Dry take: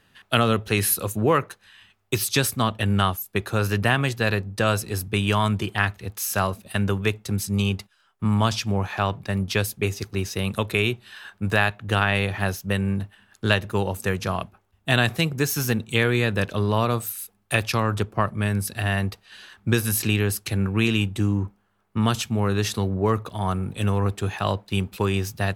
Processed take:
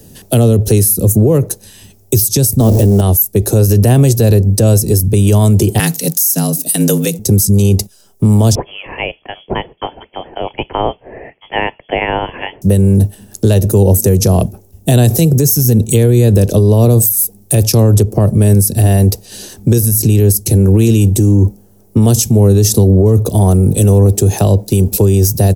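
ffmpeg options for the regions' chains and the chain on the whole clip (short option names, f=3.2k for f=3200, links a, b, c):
-filter_complex "[0:a]asettb=1/sr,asplit=3[a][b][c];[a]atrim=end=2.604[d];[b]atrim=start=2.6:end=3.01,asetpts=PTS-STARTPTS,afade=t=in:d=0.004:c=qsin,afade=t=out:st=0.406:d=0.004:c=qsin,aeval=exprs='val(0)+0.5*0.0501*sgn(val(0))':c=same,equalizer=f=430:w=0.41:g=10[e];[c]atrim=start=3.006[f];[d][e]acrossfade=d=0.004:c1=hsin:c2=qsin[g];[g][f]acrossfade=d=0.004:c1=qsin:c2=hsin,asettb=1/sr,asplit=3[h][i][j];[h]atrim=end=5.794[k];[i]atrim=start=5.79:end=7.19,asetpts=PTS-STARTPTS,afade=t=in:d=0.004:c=qsin,afade=t=out:st=1.396:d=0.004:c=qsin,tiltshelf=f=890:g=-9.5,afreqshift=65[l];[j]atrim=start=7.186[m];[k][l]acrossfade=d=0.004:c1=hsin:c2=qsin[n];[n][m]acrossfade=d=0.004:c1=qsin:c2=hsin,asettb=1/sr,asplit=3[o][p][q];[o]atrim=end=8.554[r];[p]atrim=start=8.55:end=12.62,asetpts=PTS-STARTPTS,afade=t=in:d=0.004:c=qsin,afade=t=out:st=4.066:d=0.004:c=qsin,highpass=860,lowpass=f=3k:t=q:w=0.5098,lowpass=f=3k:t=q:w=0.6013,lowpass=f=3k:t=q:w=0.9,lowpass=f=3k:t=q:w=2.563,afreqshift=-3500[s];[q]atrim=start=12.616[t];[r][s]acrossfade=d=0.004:c1=hsin:c2=qsin[u];[u][t]acrossfade=d=0.004:c1=qsin:c2=hsin,firequalizer=gain_entry='entry(450,0);entry(1200,-25);entry(3400,-17);entry(5600,0);entry(14000,7)':delay=0.05:min_phase=1,acrossover=split=140|300[v][w][x];[v]acompressor=threshold=-29dB:ratio=4[y];[w]acompressor=threshold=-41dB:ratio=4[z];[x]acompressor=threshold=-33dB:ratio=4[aa];[y][z][aa]amix=inputs=3:normalize=0,alimiter=level_in=26dB:limit=-1dB:release=50:level=0:latency=1,volume=-1dB"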